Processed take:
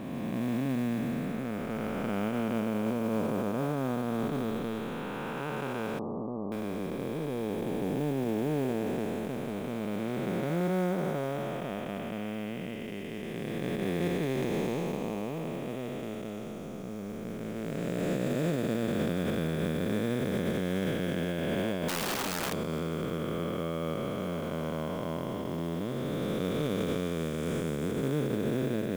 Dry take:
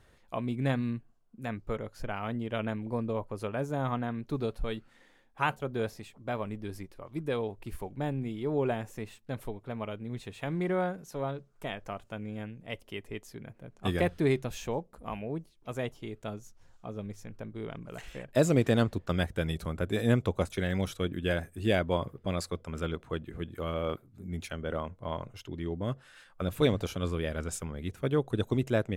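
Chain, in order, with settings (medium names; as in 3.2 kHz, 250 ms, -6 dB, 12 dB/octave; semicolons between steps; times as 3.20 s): spectral blur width 966 ms; modulation noise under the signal 25 dB; 5.99–6.52 s: rippled Chebyshev low-pass 1.2 kHz, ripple 3 dB; 21.88–22.53 s: integer overflow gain 34 dB; peak limiter -28.5 dBFS, peak gain reduction 7.5 dB; resonant low shelf 130 Hz -8.5 dB, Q 1.5; trim +7.5 dB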